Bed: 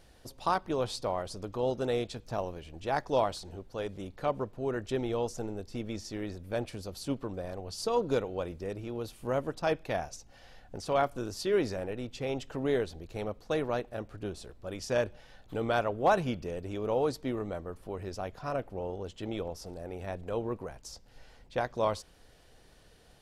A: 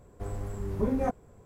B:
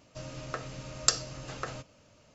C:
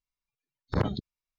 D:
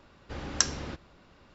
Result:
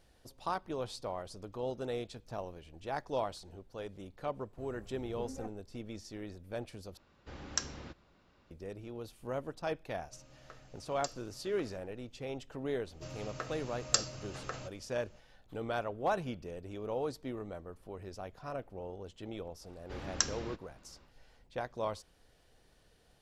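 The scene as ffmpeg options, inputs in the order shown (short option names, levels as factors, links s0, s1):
-filter_complex "[4:a]asplit=2[s0][s1];[2:a]asplit=2[s2][s3];[0:a]volume=0.447,asplit=2[s4][s5];[s4]atrim=end=6.974[s6];[s0]atrim=end=1.54,asetpts=PTS-STARTPTS,volume=0.355[s7];[s5]atrim=start=8.506[s8];[1:a]atrim=end=1.45,asetpts=PTS-STARTPTS,volume=0.133,afade=t=in:d=0.004:c=hsin,afade=t=out:st=1.446:d=0.004:c=hsin,adelay=192717S[s9];[s2]atrim=end=2.34,asetpts=PTS-STARTPTS,volume=0.133,afade=t=in:d=0.004:c=hsin,afade=t=out:st=2.336:d=0.004:c=hsin,adelay=9960[s10];[s3]atrim=end=2.34,asetpts=PTS-STARTPTS,volume=0.631,afade=t=in:d=0.004:c=hsin,afade=t=out:st=2.336:d=0.004:c=hsin,adelay=12860[s11];[s1]atrim=end=1.54,asetpts=PTS-STARTPTS,volume=0.531,afade=t=in:d=0.1,afade=t=out:st=1.44:d=0.1,adelay=19600[s12];[s6][s7]acrossfade=d=0.004:c1=hsin:c2=hsin[s13];[s13][s8]acrossfade=d=0.004:c1=hsin:c2=hsin[s14];[s14][s9][s10][s11][s12]amix=inputs=5:normalize=0"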